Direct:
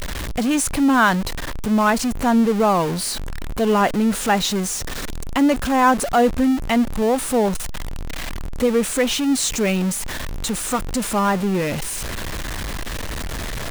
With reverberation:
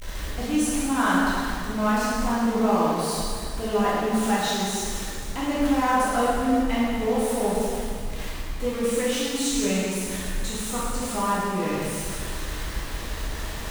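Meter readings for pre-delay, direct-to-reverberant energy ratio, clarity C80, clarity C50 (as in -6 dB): 6 ms, -8.5 dB, -1.0 dB, -3.0 dB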